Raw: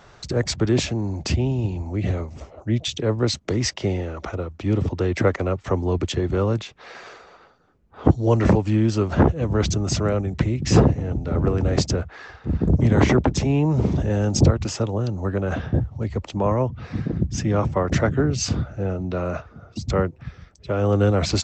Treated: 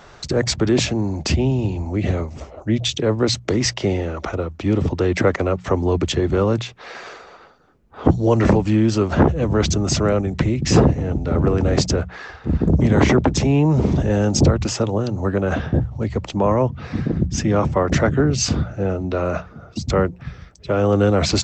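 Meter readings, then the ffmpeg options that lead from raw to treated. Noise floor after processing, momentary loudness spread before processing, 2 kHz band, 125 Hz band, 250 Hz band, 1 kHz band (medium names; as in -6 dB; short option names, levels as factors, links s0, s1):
-45 dBFS, 10 LU, +4.0 dB, +1.5 dB, +3.5 dB, +3.5 dB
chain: -filter_complex "[0:a]equalizer=f=100:t=o:w=0.38:g=-4,bandreject=f=60:t=h:w=6,bandreject=f=120:t=h:w=6,bandreject=f=180:t=h:w=6,asplit=2[s0][s1];[s1]alimiter=limit=0.178:level=0:latency=1:release=39,volume=0.794[s2];[s0][s2]amix=inputs=2:normalize=0"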